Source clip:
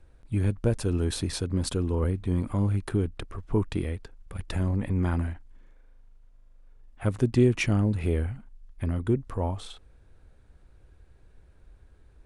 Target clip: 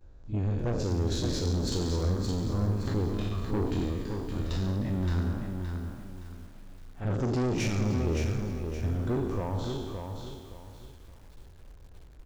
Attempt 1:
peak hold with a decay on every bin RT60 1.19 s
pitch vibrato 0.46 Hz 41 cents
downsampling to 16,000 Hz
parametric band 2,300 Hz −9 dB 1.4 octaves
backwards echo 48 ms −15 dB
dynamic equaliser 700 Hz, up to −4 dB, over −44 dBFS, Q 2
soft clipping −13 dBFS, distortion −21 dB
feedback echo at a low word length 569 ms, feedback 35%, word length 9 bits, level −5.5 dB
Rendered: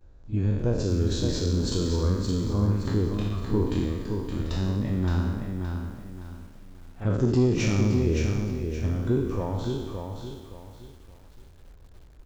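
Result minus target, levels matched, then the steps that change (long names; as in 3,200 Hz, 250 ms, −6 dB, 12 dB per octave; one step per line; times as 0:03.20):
soft clipping: distortion −13 dB
change: soft clipping −25 dBFS, distortion −9 dB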